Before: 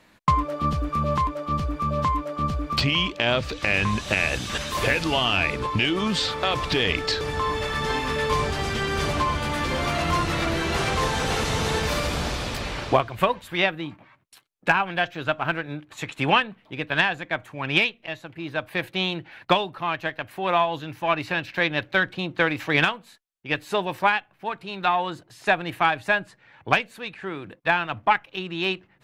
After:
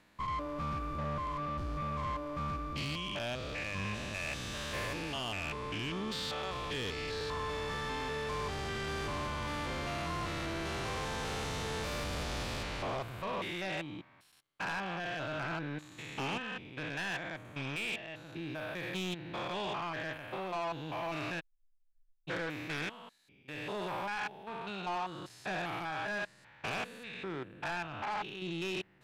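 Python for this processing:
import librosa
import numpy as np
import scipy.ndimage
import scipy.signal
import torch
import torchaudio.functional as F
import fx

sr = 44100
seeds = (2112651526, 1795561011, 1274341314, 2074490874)

y = fx.spec_steps(x, sr, hold_ms=200)
y = fx.cheby2_bandstop(y, sr, low_hz=110.0, high_hz=9900.0, order=4, stop_db=80, at=(21.39, 22.27), fade=0.02)
y = fx.rider(y, sr, range_db=4, speed_s=0.5)
y = 10.0 ** (-25.0 / 20.0) * np.tanh(y / 10.0 ** (-25.0 / 20.0))
y = F.gain(torch.from_numpy(y), -6.5).numpy()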